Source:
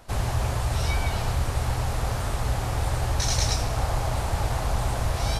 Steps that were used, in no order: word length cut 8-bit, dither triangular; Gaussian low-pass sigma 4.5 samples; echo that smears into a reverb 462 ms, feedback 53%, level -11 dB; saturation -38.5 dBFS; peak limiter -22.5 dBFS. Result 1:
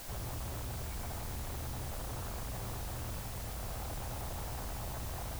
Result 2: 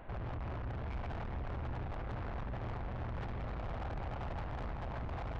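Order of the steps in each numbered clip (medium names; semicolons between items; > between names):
peak limiter > echo that smears into a reverb > saturation > Gaussian low-pass > word length cut; word length cut > Gaussian low-pass > peak limiter > saturation > echo that smears into a reverb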